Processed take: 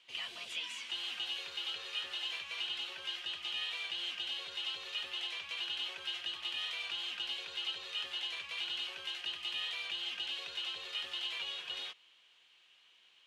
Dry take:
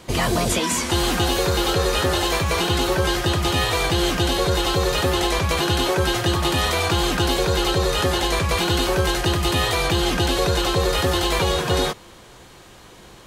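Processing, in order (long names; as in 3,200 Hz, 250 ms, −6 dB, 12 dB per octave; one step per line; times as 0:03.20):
resonant band-pass 2,900 Hz, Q 4.3
level −8 dB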